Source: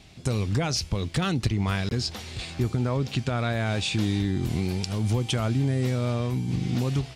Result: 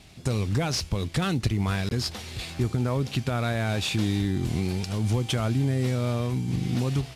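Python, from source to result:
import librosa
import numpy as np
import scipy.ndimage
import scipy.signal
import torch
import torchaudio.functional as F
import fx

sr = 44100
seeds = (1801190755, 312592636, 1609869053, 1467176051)

y = fx.cvsd(x, sr, bps=64000)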